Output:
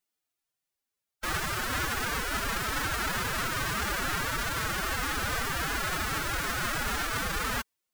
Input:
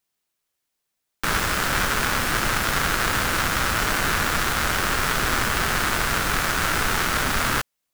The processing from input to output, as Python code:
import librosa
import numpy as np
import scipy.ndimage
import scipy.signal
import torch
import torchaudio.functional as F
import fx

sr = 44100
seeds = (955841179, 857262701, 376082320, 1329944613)

y = fx.pitch_keep_formants(x, sr, semitones=11.5)
y = y * 10.0 ** (-7.0 / 20.0)